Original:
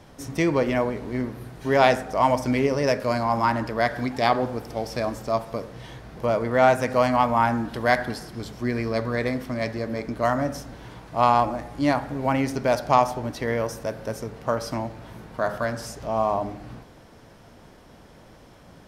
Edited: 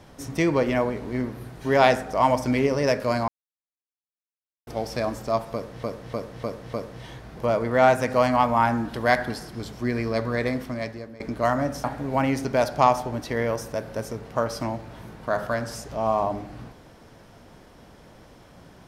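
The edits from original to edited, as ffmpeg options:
-filter_complex "[0:a]asplit=9[s0][s1][s2][s3][s4][s5][s6][s7][s8];[s0]atrim=end=3.28,asetpts=PTS-STARTPTS,afade=t=out:st=3.276:d=0.004:c=hsin[s9];[s1]atrim=start=3.28:end=4.67,asetpts=PTS-STARTPTS,volume=0[s10];[s2]atrim=start=4.67:end=5.832,asetpts=PTS-STARTPTS,afade=t=in:d=0.004:c=hsin[s11];[s3]atrim=start=5.528:end=5.832[s12];[s4]atrim=start=5.528:end=5.832[s13];[s5]atrim=start=5.528:end=5.832[s14];[s6]atrim=start=5.528:end=10,asetpts=PTS-STARTPTS,afade=t=out:st=3.872:d=0.6:silence=0.112202[s15];[s7]atrim=start=10:end=10.642,asetpts=PTS-STARTPTS,afade=t=in:d=0.004:c=hsin:silence=0.112202[s16];[s8]atrim=start=11.948[s17];[s9][s10][s11]concat=n=3:v=0:a=1[s18];[s18][s12]acrossfade=d=0.004:c1=hsin:c2=hsin[s19];[s19][s13]acrossfade=d=0.004:c1=hsin:c2=hsin[s20];[s20][s14]acrossfade=d=0.004:c1=hsin:c2=hsin[s21];[s15][s16]concat=n=2:v=0:a=1[s22];[s21][s22]acrossfade=d=0.004:c1=hsin:c2=hsin[s23];[s23][s17]acrossfade=d=0.004:c1=hsin:c2=hsin"

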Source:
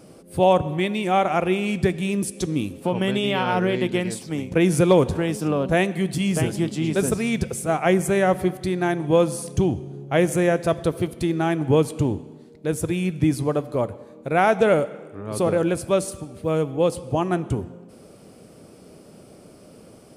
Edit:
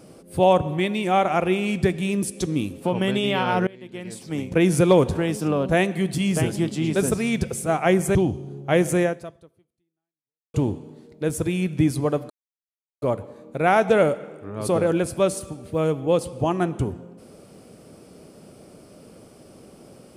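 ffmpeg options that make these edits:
-filter_complex "[0:a]asplit=5[s0][s1][s2][s3][s4];[s0]atrim=end=3.67,asetpts=PTS-STARTPTS,afade=t=out:st=3.666:d=0.004:c=hsin:silence=0.0794328[s5];[s1]atrim=start=3.67:end=8.152,asetpts=PTS-STARTPTS,afade=t=in:d=0.71:c=qua:silence=0.0794328[s6];[s2]atrim=start=9.578:end=11.97,asetpts=PTS-STARTPTS,afade=t=out:st=0.872:d=1.52:c=exp[s7];[s3]atrim=start=11.97:end=13.73,asetpts=PTS-STARTPTS,afade=t=in:d=0.004:c=hsin,afade=t=out:st=1.756:d=0.004:c=hsin,apad=pad_dur=0.72[s8];[s4]atrim=start=13.73,asetpts=PTS-STARTPTS,afade=t=in:d=0.004:c=hsin[s9];[s5][s6]concat=n=2:v=0:a=1[s10];[s7][s8][s9]concat=n=3:v=0:a=1[s11];[s10][s11]acrossfade=d=0.004:c1=hsin:c2=hsin"

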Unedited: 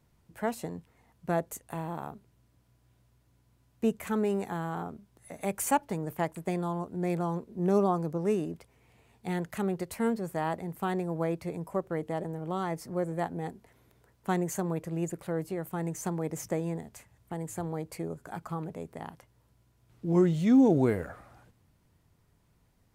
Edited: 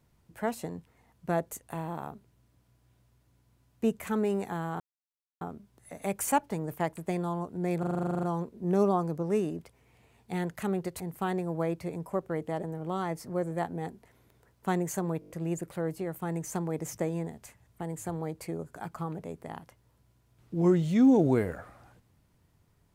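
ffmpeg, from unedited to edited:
-filter_complex "[0:a]asplit=19[s0][s1][s2][s3][s4][s5][s6][s7][s8][s9][s10][s11][s12][s13][s14][s15][s16][s17][s18];[s0]atrim=end=4.8,asetpts=PTS-STARTPTS,afade=t=out:st=4.796:d=0.004:c=hsin,apad=pad_dur=0.61[s19];[s1]atrim=start=4.8:end=7.222,asetpts=PTS-STARTPTS,afade=t=in:d=0.004:c=hsin[s20];[s2]atrim=start=7.178:end=7.222[s21];[s3]atrim=start=7.178:end=7.222[s22];[s4]atrim=start=7.178:end=7.222[s23];[s5]atrim=start=7.178:end=7.222[s24];[s6]atrim=start=7.178:end=7.222[s25];[s7]atrim=start=7.178:end=7.222[s26];[s8]atrim=start=7.178:end=7.222[s27];[s9]atrim=start=7.178:end=7.222[s28];[s10]atrim=start=7.178:end=7.222[s29];[s11]atrim=start=7.178:end=7.222[s30];[s12]atrim=start=7.178:end=9.952[s31];[s13]atrim=start=10.608:end=14.832[s32];[s14]atrim=start=14.808:end=14.832[s33];[s15]atrim=start=14.808:end=14.832[s34];[s16]atrim=start=14.808:end=14.832[s35];[s17]atrim=start=14.808:end=14.832[s36];[s18]atrim=start=14.808[s37];[s19][s20]concat=n=2:v=0:a=1[s38];[s38][s21]acrossfade=d=0.004:c1=hsin:c2=hsin[s39];[s39][s22]acrossfade=d=0.004:c1=hsin:c2=hsin[s40];[s40][s23]acrossfade=d=0.004:c1=hsin:c2=hsin[s41];[s41][s24]acrossfade=d=0.004:c1=hsin:c2=hsin[s42];[s42][s25]acrossfade=d=0.004:c1=hsin:c2=hsin[s43];[s43][s26]acrossfade=d=0.004:c1=hsin:c2=hsin[s44];[s44][s27]acrossfade=d=0.004:c1=hsin:c2=hsin[s45];[s45][s28]acrossfade=d=0.004:c1=hsin:c2=hsin[s46];[s46][s29]acrossfade=d=0.004:c1=hsin:c2=hsin[s47];[s47][s30]acrossfade=d=0.004:c1=hsin:c2=hsin[s48];[s48][s31]acrossfade=d=0.004:c1=hsin:c2=hsin[s49];[s49][s32]acrossfade=d=0.004:c1=hsin:c2=hsin[s50];[s50][s33]acrossfade=d=0.004:c1=hsin:c2=hsin[s51];[s51][s34]acrossfade=d=0.004:c1=hsin:c2=hsin[s52];[s52][s35]acrossfade=d=0.004:c1=hsin:c2=hsin[s53];[s53][s36]acrossfade=d=0.004:c1=hsin:c2=hsin[s54];[s54][s37]acrossfade=d=0.004:c1=hsin:c2=hsin"

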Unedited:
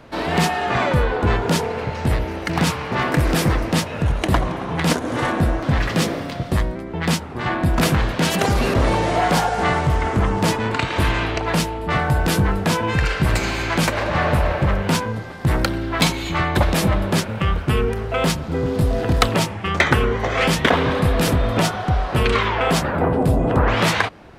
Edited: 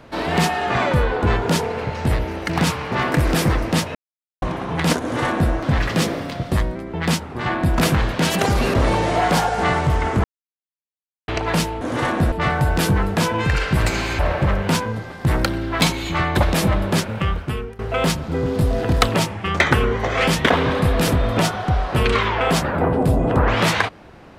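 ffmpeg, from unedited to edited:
-filter_complex "[0:a]asplit=9[s0][s1][s2][s3][s4][s5][s6][s7][s8];[s0]atrim=end=3.95,asetpts=PTS-STARTPTS,afade=t=out:st=3.946:d=0.004:c=hsin[s9];[s1]atrim=start=3.95:end=4.42,asetpts=PTS-STARTPTS,volume=0[s10];[s2]atrim=start=4.42:end=10.24,asetpts=PTS-STARTPTS,afade=t=in:d=0.004:c=hsin,afade=t=out:st=5.816:d=0.004:c=hsin[s11];[s3]atrim=start=10.24:end=11.28,asetpts=PTS-STARTPTS,volume=0[s12];[s4]atrim=start=11.28:end=11.812,asetpts=PTS-STARTPTS,afade=t=in:d=0.004:c=hsin[s13];[s5]atrim=start=5.008:end=5.522[s14];[s6]atrim=start=11.808:end=13.682[s15];[s7]atrim=start=14.388:end=17.99,asetpts=PTS-STARTPTS,afade=t=out:st=2.982:d=0.62:silence=0.1[s16];[s8]atrim=start=17.99,asetpts=PTS-STARTPTS,afade=t=in:d=0.004:c=hsin:silence=0.1[s17];[s9][s10][s11][s12][s13]concat=n=5:v=0:a=1[s18];[s18][s14]acrossfade=d=0.004:c1=hsin:c2=hsin[s19];[s19][s15]acrossfade=d=0.004:c1=hsin:c2=hsin[s20];[s16][s17]concat=n=2:v=0:a=1[s21];[s20][s21]acrossfade=d=0.004:c1=hsin:c2=hsin"

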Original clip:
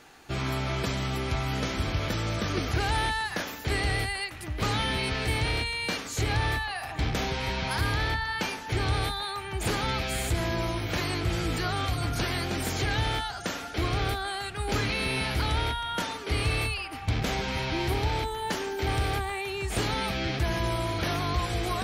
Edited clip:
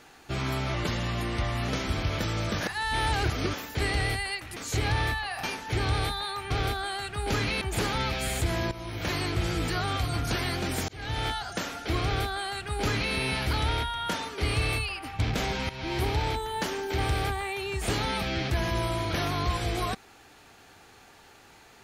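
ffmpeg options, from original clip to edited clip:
-filter_complex "[0:a]asplit=12[s0][s1][s2][s3][s4][s5][s6][s7][s8][s9][s10][s11];[s0]atrim=end=0.744[s12];[s1]atrim=start=0.74:end=1.58,asetpts=PTS-STARTPTS,asetrate=39249,aresample=44100,atrim=end_sample=41622,asetpts=PTS-STARTPTS[s13];[s2]atrim=start=1.576:end=2.502[s14];[s3]atrim=start=2.498:end=3.432,asetpts=PTS-STARTPTS,areverse[s15];[s4]atrim=start=3.428:end=4.462[s16];[s5]atrim=start=6.008:end=6.882[s17];[s6]atrim=start=8.428:end=9.502[s18];[s7]atrim=start=13.918:end=15.032[s19];[s8]atrim=start=9.498:end=10.6,asetpts=PTS-STARTPTS,afade=t=out:st=1.098:d=0.004:c=hsin:silence=0.177828[s20];[s9]atrim=start=10.6:end=12.77,asetpts=PTS-STARTPTS,afade=t=in:d=0.41:silence=0.177828,afade=t=out:st=2.166:d=0.004:c=hsin[s21];[s10]atrim=start=12.77:end=17.58,asetpts=PTS-STARTPTS,afade=t=in:d=0.4,afade=t=out:st=4.806:d=0.004:c=hsin:silence=0.211349[s22];[s11]atrim=start=17.58,asetpts=PTS-STARTPTS,afade=t=in:d=0.31:silence=0.211349[s23];[s12][s13]acrossfade=d=0.004:c1=hsin:c2=hsin[s24];[s24][s14]acrossfade=d=0.004:c1=hsin:c2=hsin[s25];[s25][s15]acrossfade=d=0.004:c1=hsin:c2=hsin[s26];[s26][s16]acrossfade=d=0.004:c1=hsin:c2=hsin[s27];[s27][s17]acrossfade=d=0.004:c1=hsin:c2=hsin[s28];[s28][s18]acrossfade=d=0.004:c1=hsin:c2=hsin[s29];[s29][s19]acrossfade=d=0.004:c1=hsin:c2=hsin[s30];[s20][s21][s22][s23]concat=n=4:v=0:a=1[s31];[s30][s31]acrossfade=d=0.004:c1=hsin:c2=hsin"

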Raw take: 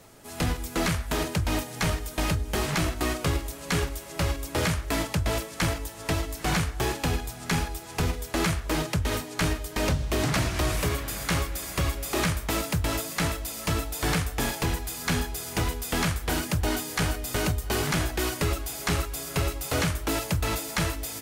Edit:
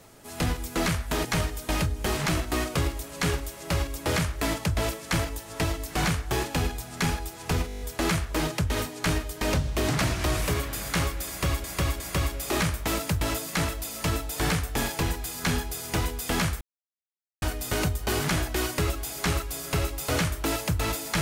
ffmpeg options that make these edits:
-filter_complex "[0:a]asplit=13[s0][s1][s2][s3][s4][s5][s6][s7][s8][s9][s10][s11][s12];[s0]atrim=end=1.252[s13];[s1]atrim=start=1.738:end=8.182[s14];[s2]atrim=start=8.158:end=8.182[s15];[s3]atrim=start=8.158:end=8.182[s16];[s4]atrim=start=8.158:end=8.182[s17];[s5]atrim=start=8.158:end=8.182[s18];[s6]atrim=start=8.158:end=8.182[s19];[s7]atrim=start=8.158:end=8.182[s20];[s8]atrim=start=8.158:end=11.992[s21];[s9]atrim=start=11.628:end=11.992[s22];[s10]atrim=start=11.628:end=16.24,asetpts=PTS-STARTPTS,afade=t=out:st=4.608:d=0.004:c=hsin[s23];[s11]atrim=start=16.24:end=17.05,asetpts=PTS-STARTPTS,volume=0[s24];[s12]atrim=start=17.05,asetpts=PTS-STARTPTS,afade=t=in:d=0.004:c=hsin[s25];[s13][s14]acrossfade=d=0.004:c1=hsin:c2=hsin[s26];[s26][s15]acrossfade=d=0.004:c1=hsin:c2=hsin[s27];[s27][s16]acrossfade=d=0.004:c1=hsin:c2=hsin[s28];[s28][s17]acrossfade=d=0.004:c1=hsin:c2=hsin[s29];[s29][s18]acrossfade=d=0.004:c1=hsin:c2=hsin[s30];[s30][s19]acrossfade=d=0.004:c1=hsin:c2=hsin[s31];[s31][s20]acrossfade=d=0.004:c1=hsin:c2=hsin[s32];[s32][s21]acrossfade=d=0.004:c1=hsin:c2=hsin[s33];[s33][s22]acrossfade=d=0.004:c1=hsin:c2=hsin[s34];[s23][s24][s25]concat=n=3:v=0:a=1[s35];[s34][s35]acrossfade=d=0.004:c1=hsin:c2=hsin"

